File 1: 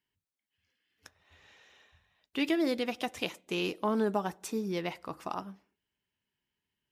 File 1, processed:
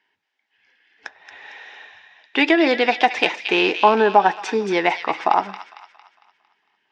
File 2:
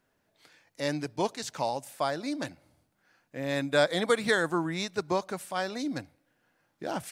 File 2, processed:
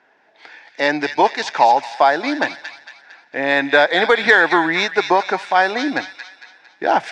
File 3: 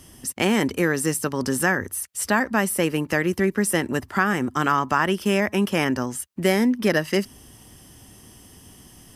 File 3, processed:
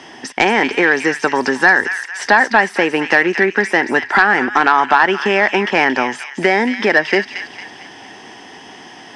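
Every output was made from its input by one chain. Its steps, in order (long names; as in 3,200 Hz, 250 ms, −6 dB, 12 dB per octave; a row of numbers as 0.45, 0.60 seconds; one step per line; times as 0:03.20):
downward compressor 3 to 1, threshold −26 dBFS
loudspeaker in its box 480–4,300 Hz, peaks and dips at 550 Hz −6 dB, 830 Hz +5 dB, 1,200 Hz −7 dB, 1,700 Hz +3 dB, 3,000 Hz −6 dB, 4,200 Hz −7 dB
delay with a high-pass on its return 227 ms, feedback 45%, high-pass 2,000 Hz, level −6.5 dB
sine wavefolder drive 4 dB, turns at −13.5 dBFS
normalise the peak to −1.5 dBFS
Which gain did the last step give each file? +13.0, +12.0, +12.0 decibels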